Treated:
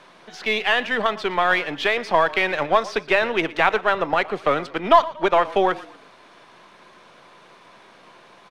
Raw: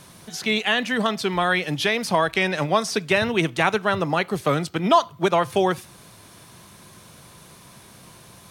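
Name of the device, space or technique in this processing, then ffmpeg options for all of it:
crystal radio: -filter_complex "[0:a]asplit=4[s0][s1][s2][s3];[s1]adelay=117,afreqshift=-34,volume=0.119[s4];[s2]adelay=234,afreqshift=-68,volume=0.0462[s5];[s3]adelay=351,afreqshift=-102,volume=0.018[s6];[s0][s4][s5][s6]amix=inputs=4:normalize=0,highpass=390,lowpass=2800,aeval=exprs='if(lt(val(0),0),0.708*val(0),val(0))':c=same,volume=1.68"

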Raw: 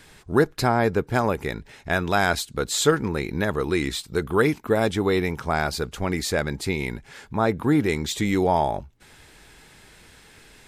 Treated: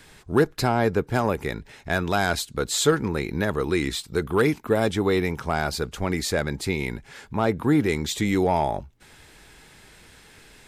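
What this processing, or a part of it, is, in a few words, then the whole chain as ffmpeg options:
one-band saturation: -filter_complex "[0:a]acrossover=split=460|4900[s0][s1][s2];[s1]asoftclip=type=tanh:threshold=0.178[s3];[s0][s3][s2]amix=inputs=3:normalize=0"

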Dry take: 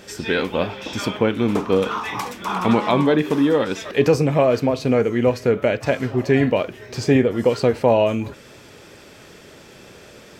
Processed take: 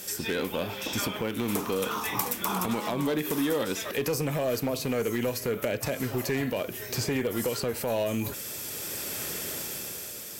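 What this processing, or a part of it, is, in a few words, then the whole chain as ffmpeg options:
FM broadcast chain: -filter_complex "[0:a]highpass=42,dynaudnorm=f=110:g=17:m=4.47,acrossover=split=700|3000[s0][s1][s2];[s0]acompressor=threshold=0.112:ratio=4[s3];[s1]acompressor=threshold=0.0355:ratio=4[s4];[s2]acompressor=threshold=0.00562:ratio=4[s5];[s3][s4][s5]amix=inputs=3:normalize=0,aemphasis=mode=production:type=50fm,alimiter=limit=0.237:level=0:latency=1:release=99,asoftclip=type=hard:threshold=0.15,lowpass=f=15000:w=0.5412,lowpass=f=15000:w=1.3066,aemphasis=mode=production:type=50fm,volume=0.562"

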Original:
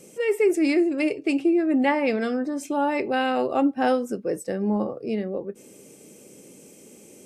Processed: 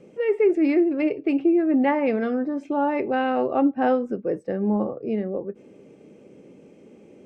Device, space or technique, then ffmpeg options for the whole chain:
phone in a pocket: -af "lowpass=3100,highshelf=f=2400:g=-10,volume=1.19"

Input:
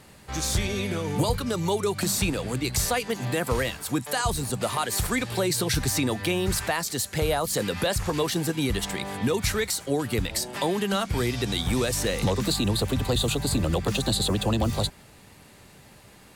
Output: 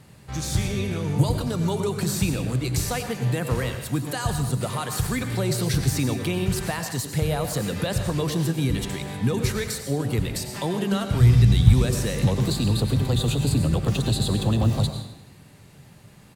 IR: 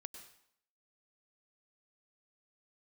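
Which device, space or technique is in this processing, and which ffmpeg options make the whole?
bathroom: -filter_complex "[0:a]asplit=3[s0][s1][s2];[s0]afade=t=out:st=11.19:d=0.02[s3];[s1]asubboost=boost=6:cutoff=130,afade=t=in:st=11.19:d=0.02,afade=t=out:st=11.73:d=0.02[s4];[s2]afade=t=in:st=11.73:d=0.02[s5];[s3][s4][s5]amix=inputs=3:normalize=0[s6];[1:a]atrim=start_sample=2205[s7];[s6][s7]afir=irnorm=-1:irlink=0,asplit=7[s8][s9][s10][s11][s12][s13][s14];[s9]adelay=86,afreqshift=42,volume=0.126[s15];[s10]adelay=172,afreqshift=84,volume=0.0767[s16];[s11]adelay=258,afreqshift=126,volume=0.0468[s17];[s12]adelay=344,afreqshift=168,volume=0.0285[s18];[s13]adelay=430,afreqshift=210,volume=0.0174[s19];[s14]adelay=516,afreqshift=252,volume=0.0106[s20];[s8][s15][s16][s17][s18][s19][s20]amix=inputs=7:normalize=0,equalizer=f=130:w=1.1:g=11.5,volume=1.26"

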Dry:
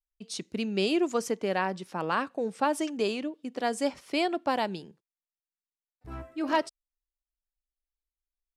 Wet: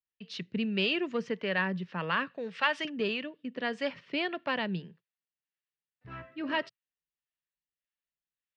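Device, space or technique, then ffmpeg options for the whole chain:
guitar amplifier with harmonic tremolo: -filter_complex "[0:a]asettb=1/sr,asplit=3[s0][s1][s2];[s0]atrim=end=2.284[s3];[s1]atrim=start=2.28:end=2.85,asetpts=PTS-STARTPTS,afade=t=in:d=0.004:c=qsin,afade=t=out:st=0.566:d=0.004:c=qsin,tiltshelf=f=730:g=-8[s4];[s2]atrim=start=2.846[s5];[s3][s4]acrossfade=d=0.004:c1=hsin:c2=qsin[s6];[s6][s5]acrossfade=d=0.004:c1=qsin:c2=hsin,acrossover=split=490[s7][s8];[s7]aeval=exprs='val(0)*(1-0.5/2+0.5/2*cos(2*PI*1.7*n/s))':c=same[s9];[s8]aeval=exprs='val(0)*(1-0.5/2-0.5/2*cos(2*PI*1.7*n/s))':c=same[s10];[s9][s10]amix=inputs=2:normalize=0,asoftclip=type=tanh:threshold=0.126,highpass=110,equalizer=f=120:t=q:w=4:g=8,equalizer=f=170:t=q:w=4:g=9,equalizer=f=320:t=q:w=4:g=-5,equalizer=f=780:t=q:w=4:g=-9,equalizer=f=1800:t=q:w=4:g=9,equalizer=f=2800:t=q:w=4:g=7,lowpass=f=4200:w=0.5412,lowpass=f=4200:w=1.3066"

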